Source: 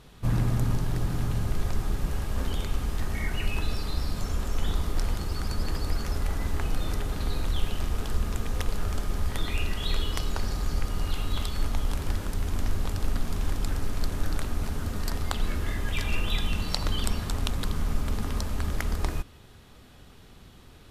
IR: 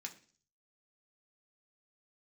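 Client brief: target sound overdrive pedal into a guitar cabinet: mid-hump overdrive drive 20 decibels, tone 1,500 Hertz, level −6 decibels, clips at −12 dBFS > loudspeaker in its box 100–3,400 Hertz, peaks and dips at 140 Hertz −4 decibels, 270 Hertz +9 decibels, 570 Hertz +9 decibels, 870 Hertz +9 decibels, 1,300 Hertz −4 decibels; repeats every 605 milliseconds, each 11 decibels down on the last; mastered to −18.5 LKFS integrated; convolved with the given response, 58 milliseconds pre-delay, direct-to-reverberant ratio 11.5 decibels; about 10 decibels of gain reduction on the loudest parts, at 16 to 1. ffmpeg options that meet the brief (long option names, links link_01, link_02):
-filter_complex "[0:a]acompressor=threshold=-28dB:ratio=16,aecho=1:1:605|1210|1815:0.282|0.0789|0.0221,asplit=2[link_01][link_02];[1:a]atrim=start_sample=2205,adelay=58[link_03];[link_02][link_03]afir=irnorm=-1:irlink=0,volume=-8.5dB[link_04];[link_01][link_04]amix=inputs=2:normalize=0,asplit=2[link_05][link_06];[link_06]highpass=frequency=720:poles=1,volume=20dB,asoftclip=type=tanh:threshold=-12dB[link_07];[link_05][link_07]amix=inputs=2:normalize=0,lowpass=frequency=1500:poles=1,volume=-6dB,highpass=100,equalizer=frequency=140:width_type=q:width=4:gain=-4,equalizer=frequency=270:width_type=q:width=4:gain=9,equalizer=frequency=570:width_type=q:width=4:gain=9,equalizer=frequency=870:width_type=q:width=4:gain=9,equalizer=frequency=1300:width_type=q:width=4:gain=-4,lowpass=frequency=3400:width=0.5412,lowpass=frequency=3400:width=1.3066,volume=13dB"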